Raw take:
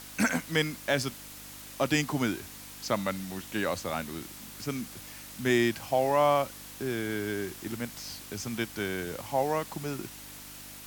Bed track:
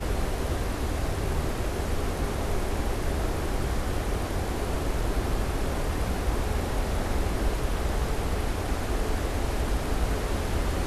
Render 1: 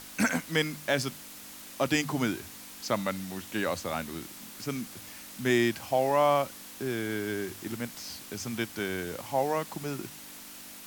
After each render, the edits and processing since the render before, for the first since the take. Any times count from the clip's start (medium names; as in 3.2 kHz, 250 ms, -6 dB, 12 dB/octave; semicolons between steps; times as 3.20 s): de-hum 50 Hz, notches 3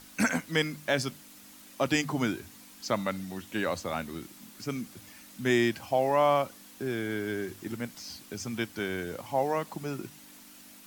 noise reduction 7 dB, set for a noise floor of -46 dBFS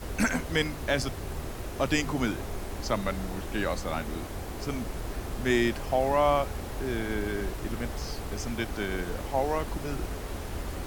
add bed track -8 dB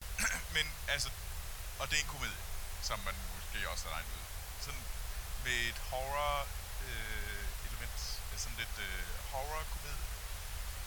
amplifier tone stack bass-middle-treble 10-0-10; gate with hold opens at -38 dBFS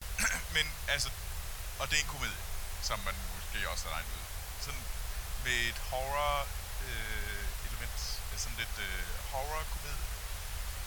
trim +3 dB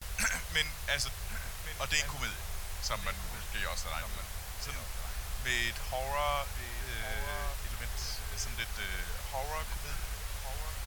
echo from a far wall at 190 m, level -9 dB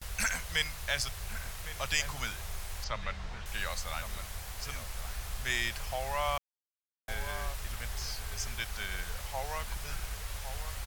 2.84–3.46 s: distance through air 140 m; 6.38–7.08 s: mute